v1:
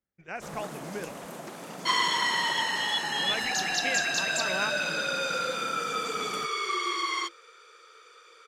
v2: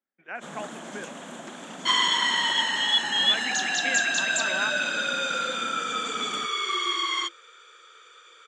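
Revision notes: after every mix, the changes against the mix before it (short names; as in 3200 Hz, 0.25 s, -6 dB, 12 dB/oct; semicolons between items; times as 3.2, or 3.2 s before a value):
speech: add BPF 300–2600 Hz; master: add speaker cabinet 180–8700 Hz, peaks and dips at 240 Hz +8 dB, 450 Hz -4 dB, 1600 Hz +5 dB, 3300 Hz +9 dB, 4900 Hz -7 dB, 7200 Hz +7 dB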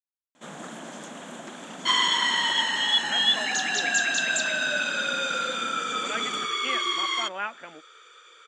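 speech: entry +2.80 s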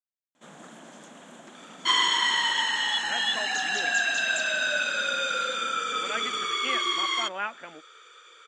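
first sound -7.5 dB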